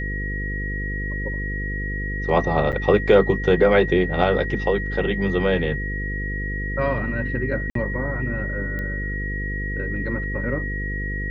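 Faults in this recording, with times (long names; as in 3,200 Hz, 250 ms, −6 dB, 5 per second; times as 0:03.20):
mains buzz 50 Hz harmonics 10 −28 dBFS
whistle 1,900 Hz −29 dBFS
0:02.72–0:02.73: drop-out 7.9 ms
0:07.70–0:07.75: drop-out 53 ms
0:08.79: click −19 dBFS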